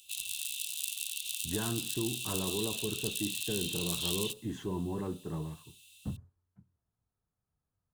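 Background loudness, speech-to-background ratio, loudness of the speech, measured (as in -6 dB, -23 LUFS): -34.5 LUFS, -4.0 dB, -38.5 LUFS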